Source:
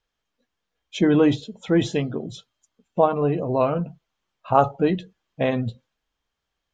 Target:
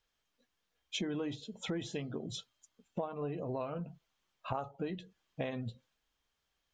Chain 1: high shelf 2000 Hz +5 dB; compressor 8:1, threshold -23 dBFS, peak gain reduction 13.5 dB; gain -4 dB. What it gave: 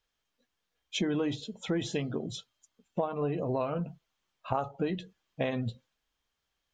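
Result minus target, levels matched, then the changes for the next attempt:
compressor: peak gain reduction -7 dB
change: compressor 8:1, threshold -31 dBFS, peak gain reduction 20.5 dB

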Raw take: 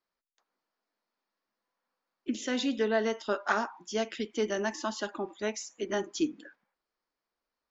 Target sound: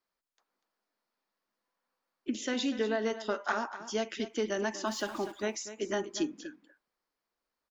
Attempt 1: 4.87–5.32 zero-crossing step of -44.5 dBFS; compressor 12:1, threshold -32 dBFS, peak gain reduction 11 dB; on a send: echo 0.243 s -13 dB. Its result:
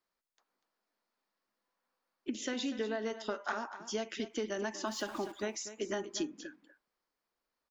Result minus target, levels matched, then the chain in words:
compressor: peak gain reduction +5.5 dB
4.87–5.32 zero-crossing step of -44.5 dBFS; compressor 12:1, threshold -26 dBFS, peak gain reduction 5.5 dB; on a send: echo 0.243 s -13 dB

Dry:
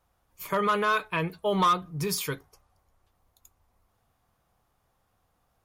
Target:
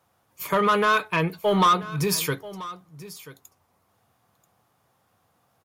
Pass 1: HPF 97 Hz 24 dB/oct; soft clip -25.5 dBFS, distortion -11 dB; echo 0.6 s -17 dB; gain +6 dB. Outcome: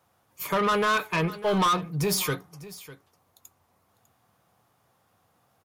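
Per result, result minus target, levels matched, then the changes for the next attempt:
echo 0.385 s early; soft clip: distortion +9 dB
change: echo 0.985 s -17 dB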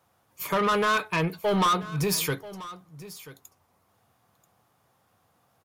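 soft clip: distortion +9 dB
change: soft clip -18 dBFS, distortion -20 dB

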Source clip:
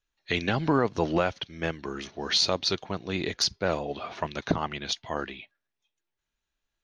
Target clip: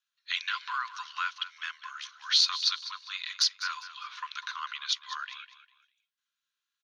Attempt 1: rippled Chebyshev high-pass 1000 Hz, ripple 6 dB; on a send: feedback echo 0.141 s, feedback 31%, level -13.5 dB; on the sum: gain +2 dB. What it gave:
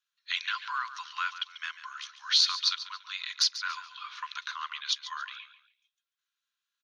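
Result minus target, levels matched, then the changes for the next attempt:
echo 60 ms early
change: feedback echo 0.201 s, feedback 31%, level -13.5 dB

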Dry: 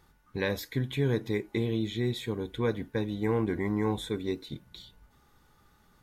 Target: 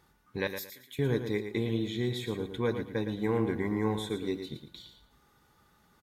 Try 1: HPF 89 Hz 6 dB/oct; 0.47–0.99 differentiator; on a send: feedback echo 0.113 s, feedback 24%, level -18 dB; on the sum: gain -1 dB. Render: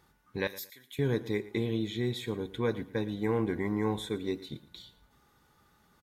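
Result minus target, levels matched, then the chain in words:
echo-to-direct -9.5 dB
HPF 89 Hz 6 dB/oct; 0.47–0.99 differentiator; on a send: feedback echo 0.113 s, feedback 24%, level -8.5 dB; on the sum: gain -1 dB

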